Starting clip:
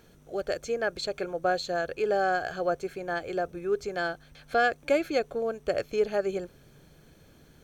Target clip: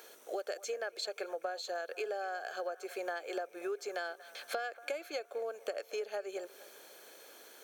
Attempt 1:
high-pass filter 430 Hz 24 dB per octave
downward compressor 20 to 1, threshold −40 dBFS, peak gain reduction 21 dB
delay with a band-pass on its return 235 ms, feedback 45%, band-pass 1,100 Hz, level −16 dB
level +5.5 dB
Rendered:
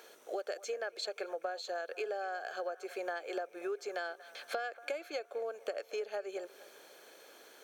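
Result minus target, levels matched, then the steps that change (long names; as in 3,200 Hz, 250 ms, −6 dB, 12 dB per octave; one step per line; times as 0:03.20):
8,000 Hz band −3.0 dB
add after high-pass filter: high-shelf EQ 7,700 Hz +8 dB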